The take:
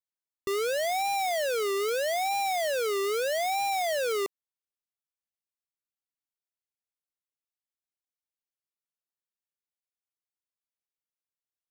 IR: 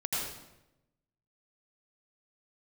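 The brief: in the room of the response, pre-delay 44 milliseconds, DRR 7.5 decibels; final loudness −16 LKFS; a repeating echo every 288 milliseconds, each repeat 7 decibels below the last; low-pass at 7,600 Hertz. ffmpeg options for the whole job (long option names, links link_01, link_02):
-filter_complex "[0:a]lowpass=7600,aecho=1:1:288|576|864|1152|1440:0.447|0.201|0.0905|0.0407|0.0183,asplit=2[link_01][link_02];[1:a]atrim=start_sample=2205,adelay=44[link_03];[link_02][link_03]afir=irnorm=-1:irlink=0,volume=-13.5dB[link_04];[link_01][link_04]amix=inputs=2:normalize=0,volume=11dB"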